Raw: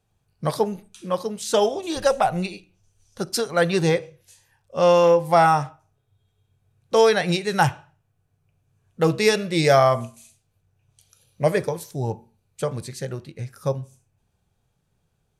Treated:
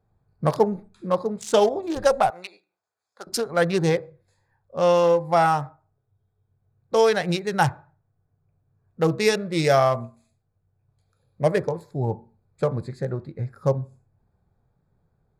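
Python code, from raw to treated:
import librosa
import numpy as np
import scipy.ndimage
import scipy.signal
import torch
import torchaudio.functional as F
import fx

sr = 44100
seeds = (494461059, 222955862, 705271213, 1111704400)

y = fx.wiener(x, sr, points=15)
y = fx.highpass(y, sr, hz=870.0, slope=12, at=(2.3, 3.27))
y = fx.rider(y, sr, range_db=3, speed_s=2.0)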